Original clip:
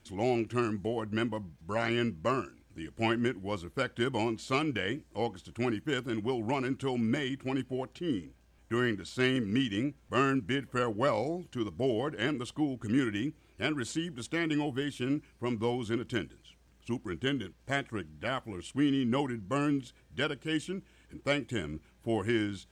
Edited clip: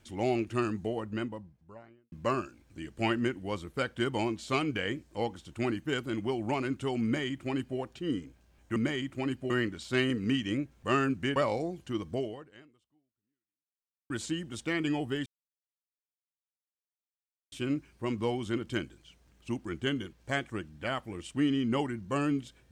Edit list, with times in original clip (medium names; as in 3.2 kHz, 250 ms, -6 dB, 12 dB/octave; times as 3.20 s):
0.68–2.12 s: studio fade out
7.04–7.78 s: copy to 8.76 s
10.62–11.02 s: delete
11.79–13.76 s: fade out exponential
14.92 s: insert silence 2.26 s